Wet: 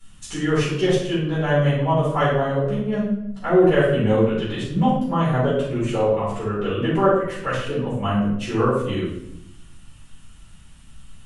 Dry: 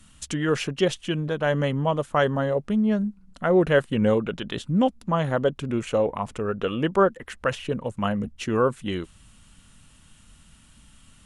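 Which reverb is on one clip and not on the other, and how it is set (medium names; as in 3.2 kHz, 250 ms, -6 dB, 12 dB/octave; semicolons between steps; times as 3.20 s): simulated room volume 200 m³, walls mixed, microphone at 4.3 m; trim -10 dB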